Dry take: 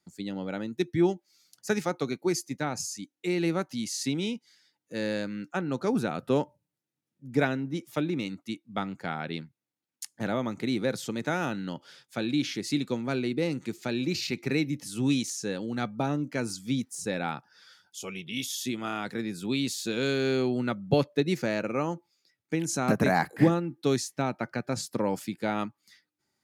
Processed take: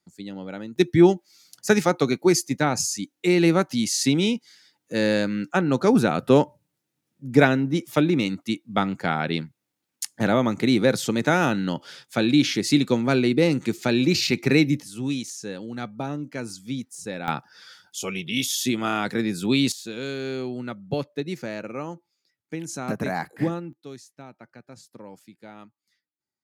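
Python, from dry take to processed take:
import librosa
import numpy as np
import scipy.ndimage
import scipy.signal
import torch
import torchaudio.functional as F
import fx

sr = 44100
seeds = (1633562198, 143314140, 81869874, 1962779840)

y = fx.gain(x, sr, db=fx.steps((0.0, -1.0), (0.76, 9.0), (14.82, -1.5), (17.28, 8.0), (19.72, -3.5), (23.73, -14.5)))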